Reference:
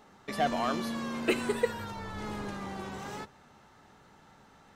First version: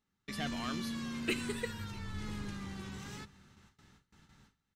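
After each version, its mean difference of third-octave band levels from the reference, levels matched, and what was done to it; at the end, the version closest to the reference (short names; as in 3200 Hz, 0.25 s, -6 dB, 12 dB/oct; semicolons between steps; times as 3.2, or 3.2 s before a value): 5.5 dB: high shelf 9800 Hz -6 dB; echo 0.649 s -23 dB; gate with hold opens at -47 dBFS; passive tone stack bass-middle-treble 6-0-2; gain +15 dB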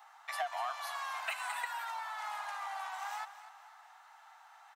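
15.0 dB: steep high-pass 700 Hz 72 dB/oct; bell 4900 Hz -6.5 dB 2.3 oct; compressor 12:1, threshold -37 dBFS, peak gain reduction 11.5 dB; on a send: feedback echo 0.245 s, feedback 39%, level -13.5 dB; on the sum: gain +4 dB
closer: first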